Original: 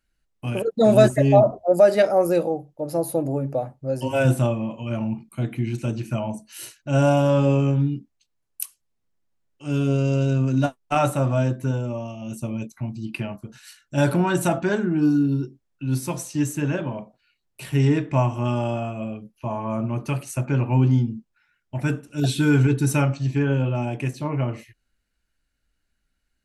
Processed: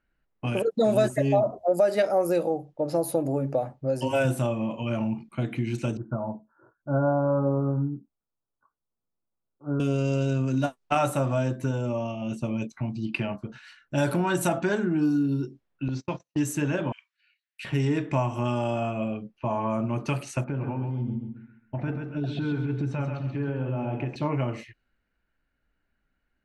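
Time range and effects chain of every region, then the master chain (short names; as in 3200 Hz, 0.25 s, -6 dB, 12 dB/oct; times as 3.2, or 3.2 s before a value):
5.97–9.8 steep low-pass 1500 Hz 96 dB/oct + upward expander, over -34 dBFS
15.88–16.37 gate -29 dBFS, range -46 dB + steep low-pass 7200 Hz 72 dB/oct + compressor 3:1, threshold -27 dBFS
16.92–17.65 steep high-pass 1600 Hz 48 dB/oct + high shelf 7200 Hz +11 dB
20.44–24.16 compressor 10:1, threshold -25 dBFS + tape spacing loss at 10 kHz 31 dB + feedback echo 0.134 s, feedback 33%, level -6 dB
whole clip: low-pass opened by the level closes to 1900 Hz, open at -19.5 dBFS; compressor 2.5:1, threshold -27 dBFS; low shelf 130 Hz -7 dB; gain +4 dB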